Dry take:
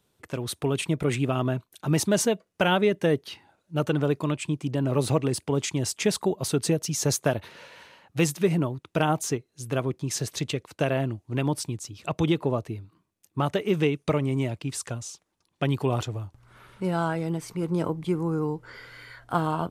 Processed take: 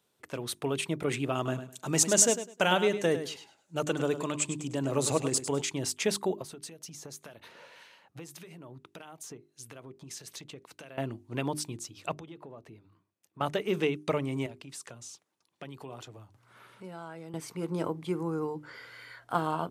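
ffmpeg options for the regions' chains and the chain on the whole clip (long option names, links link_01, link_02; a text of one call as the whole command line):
ffmpeg -i in.wav -filter_complex "[0:a]asettb=1/sr,asplit=3[link_01][link_02][link_03];[link_01]atrim=end=1.354[link_04];[link_02]atrim=start=1.35:end=5.62,asetpts=PTS-STARTPTS,afade=type=in:duration=0.004:curve=qsin,afade=type=out:start_time=4.266:duration=0.004:curve=qsin,equalizer=frequency=7200:width_type=o:width=0.57:gain=14,aecho=1:1:102|204|306:0.282|0.0592|0.0124,atrim=end_sample=188307[link_05];[link_03]atrim=start=5.616[link_06];[link_04][link_05]acrossfade=duration=0.004:curve1=hsin:curve2=qsin[link_07];[link_07][link_06]acrossfade=duration=0.004:curve1=qsin:curve2=hsin,asettb=1/sr,asplit=3[link_08][link_09][link_10];[link_08]atrim=end=6.424[link_11];[link_09]atrim=start=6.42:end=10.98,asetpts=PTS-STARTPTS,afade=type=in:duration=0.004:curve=qsin,afade=type=out:start_time=4.556:duration=0.004:curve=qsin,acompressor=threshold=-34dB:ratio=8:attack=3.2:release=140:knee=1:detection=peak,acrossover=split=1500[link_12][link_13];[link_12]aeval=exprs='val(0)*(1-0.5/2+0.5/2*cos(2*PI*1.7*n/s))':channel_layout=same[link_14];[link_13]aeval=exprs='val(0)*(1-0.5/2-0.5/2*cos(2*PI*1.7*n/s))':channel_layout=same[link_15];[link_14][link_15]amix=inputs=2:normalize=0[link_16];[link_10]atrim=start=10.976[link_17];[link_11][link_16]acrossfade=duration=0.004:curve1=hsin:curve2=qsin[link_18];[link_18][link_17]acrossfade=duration=0.004:curve1=qsin:curve2=hsin,asettb=1/sr,asplit=3[link_19][link_20][link_21];[link_19]atrim=end=12.144[link_22];[link_20]atrim=start=12.14:end=13.41,asetpts=PTS-STARTPTS,afade=type=in:duration=0.004:curve=qsin,afade=type=out:start_time=1.266:duration=0.004:curve=qsin,highshelf=frequency=4000:gain=-8.5,acompressor=threshold=-40dB:ratio=4:attack=3.2:release=140:knee=1:detection=peak[link_23];[link_21]atrim=start=13.406[link_24];[link_22][link_23]acrossfade=duration=0.004:curve1=hsin:curve2=qsin[link_25];[link_25][link_24]acrossfade=duration=0.004:curve1=qsin:curve2=hsin,asettb=1/sr,asplit=3[link_26][link_27][link_28];[link_26]atrim=end=14.464[link_29];[link_27]atrim=start=14.46:end=17.34,asetpts=PTS-STARTPTS,afade=type=in:duration=0.004:curve=qsin,afade=type=out:start_time=2.876:duration=0.004:curve=qsin,highpass=frequency=83:width=0.5412,highpass=frequency=83:width=1.3066,acompressor=threshold=-40dB:ratio=2.5:attack=3.2:release=140:knee=1:detection=peak[link_30];[link_28]atrim=start=17.336[link_31];[link_29][link_30]acrossfade=duration=0.004:curve1=hsin:curve2=qsin[link_32];[link_32][link_31]acrossfade=duration=0.004:curve1=qsin:curve2=hsin,highpass=frequency=240:poles=1,bandreject=frequency=50:width_type=h:width=6,bandreject=frequency=100:width_type=h:width=6,bandreject=frequency=150:width_type=h:width=6,bandreject=frequency=200:width_type=h:width=6,bandreject=frequency=250:width_type=h:width=6,bandreject=frequency=300:width_type=h:width=6,bandreject=frequency=350:width_type=h:width=6,bandreject=frequency=400:width_type=h:width=6,volume=-2.5dB" out.wav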